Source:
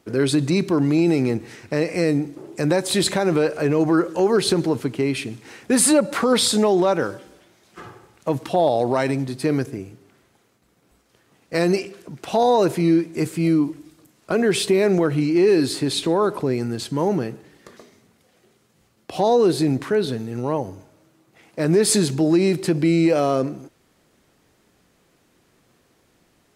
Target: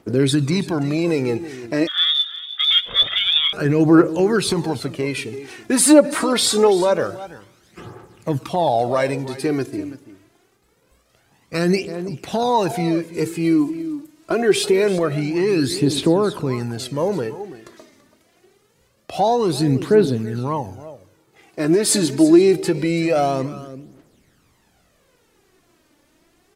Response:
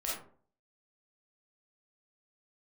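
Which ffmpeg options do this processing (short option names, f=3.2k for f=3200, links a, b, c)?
-filter_complex "[0:a]aecho=1:1:333:0.168,asettb=1/sr,asplit=3[a][b][c];[a]atrim=end=1.874[d];[b]atrim=start=1.87:end=3.53,asetpts=PTS-STARTPTS,afade=t=in:d=0.004:c=qsin,afade=t=out:st=1.656:d=0.004:c=qsin,lowpass=f=3.2k:t=q:w=0.5098,lowpass=f=3.2k:t=q:w=0.6013,lowpass=f=3.2k:t=q:w=0.9,lowpass=f=3.2k:t=q:w=2.563,afreqshift=-3800[e];[c]atrim=start=3.526[f];[d][e]acrossfade=d=0.004:c1=hsin:c2=qsin[g];[g][f]acrossfade=d=0.004:c1=qsin:c2=hsin,aphaser=in_gain=1:out_gain=1:delay=3.5:decay=0.56:speed=0.25:type=triangular"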